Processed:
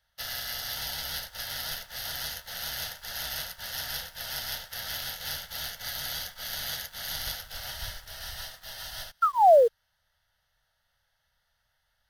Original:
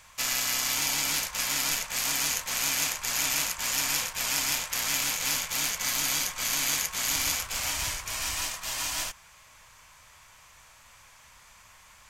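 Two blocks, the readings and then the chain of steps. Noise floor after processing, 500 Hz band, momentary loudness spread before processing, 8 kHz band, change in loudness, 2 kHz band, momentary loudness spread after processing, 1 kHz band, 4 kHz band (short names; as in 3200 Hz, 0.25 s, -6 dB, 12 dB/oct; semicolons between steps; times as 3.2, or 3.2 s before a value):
-76 dBFS, +17.0 dB, 5 LU, -13.5 dB, -3.5 dB, -7.5 dB, 12 LU, +8.0 dB, -4.5 dB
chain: octaver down 2 oct, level -1 dB; on a send: thinning echo 0.174 s, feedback 67%, level -20 dB; on the sum: painted sound fall, 9.22–9.68, 440–1400 Hz -19 dBFS; fixed phaser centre 1600 Hz, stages 8; in parallel at -4 dB: bit-crush 7-bit; on the sum: upward expander 1.5:1, over -49 dBFS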